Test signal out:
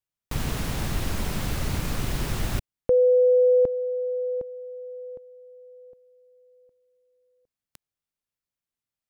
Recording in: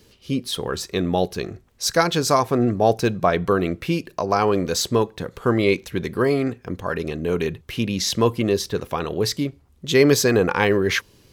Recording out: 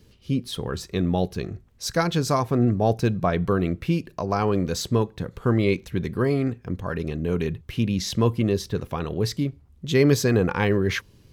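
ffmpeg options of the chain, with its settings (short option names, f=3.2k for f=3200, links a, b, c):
-af "bass=f=250:g=9,treble=f=4k:g=-2,volume=-5.5dB"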